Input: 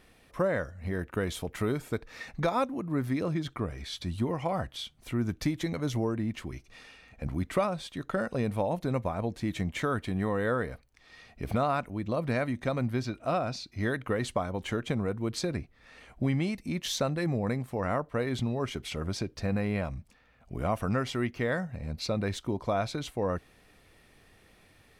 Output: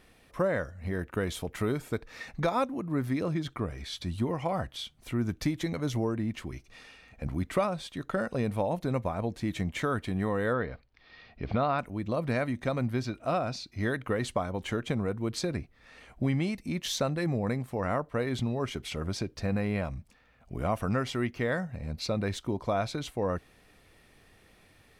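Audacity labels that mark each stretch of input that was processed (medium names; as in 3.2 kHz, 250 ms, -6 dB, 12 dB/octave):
10.530000	11.790000	steep low-pass 4.9 kHz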